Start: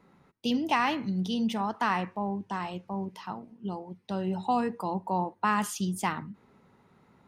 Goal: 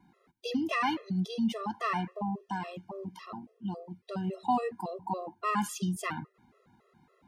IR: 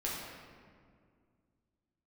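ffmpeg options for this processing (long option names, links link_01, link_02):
-af "afftfilt=real='re*gt(sin(2*PI*3.6*pts/sr)*(1-2*mod(floor(b*sr/1024/350),2)),0)':imag='im*gt(sin(2*PI*3.6*pts/sr)*(1-2*mod(floor(b*sr/1024/350),2)),0)':win_size=1024:overlap=0.75"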